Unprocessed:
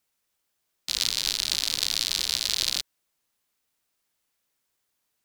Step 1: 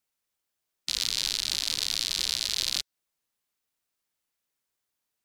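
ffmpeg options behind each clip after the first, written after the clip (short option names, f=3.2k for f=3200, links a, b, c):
-af "afftdn=nr=12:nf=-46,alimiter=limit=-15dB:level=0:latency=1:release=168,volume=6dB"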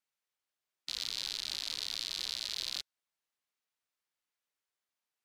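-filter_complex "[0:a]asplit=2[a][b];[b]highpass=f=720:p=1,volume=9dB,asoftclip=type=tanh:threshold=-8.5dB[c];[a][c]amix=inputs=2:normalize=0,lowpass=f=3.9k:p=1,volume=-6dB,volume=-8dB"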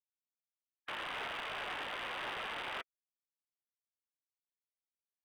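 -filter_complex "[0:a]afftfilt=real='re*gte(hypot(re,im),0.000316)':imag='im*gte(hypot(re,im),0.000316)':win_size=1024:overlap=0.75,highpass=f=530:t=q:w=0.5412,highpass=f=530:t=q:w=1.307,lowpass=f=3.1k:t=q:w=0.5176,lowpass=f=3.1k:t=q:w=0.7071,lowpass=f=3.1k:t=q:w=1.932,afreqshift=-160,asplit=2[a][b];[b]highpass=f=720:p=1,volume=29dB,asoftclip=type=tanh:threshold=-29dB[c];[a][c]amix=inputs=2:normalize=0,lowpass=f=1.9k:p=1,volume=-6dB,volume=1dB"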